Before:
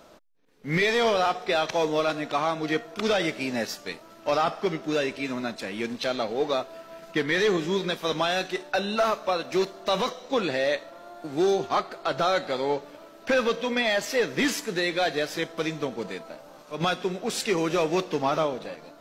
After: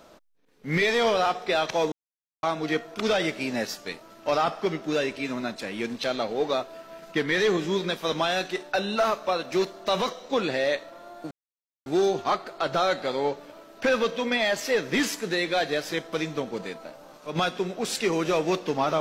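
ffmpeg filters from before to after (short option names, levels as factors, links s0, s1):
-filter_complex "[0:a]asplit=4[s0][s1][s2][s3];[s0]atrim=end=1.92,asetpts=PTS-STARTPTS,afade=t=out:st=1.916:d=0.004:c=hsin[s4];[s1]atrim=start=1.92:end=2.43,asetpts=PTS-STARTPTS,volume=0[s5];[s2]atrim=start=2.43:end=11.31,asetpts=PTS-STARTPTS,afade=t=in:d=0.004:c=hsin,afade=t=out:st=8.876:d=0.004:c=hsin,apad=pad_dur=0.55[s6];[s3]atrim=start=11.31,asetpts=PTS-STARTPTS,afade=t=in:d=0.004:c=hsin[s7];[s4][s5][s6][s7]concat=n=4:v=0:a=1"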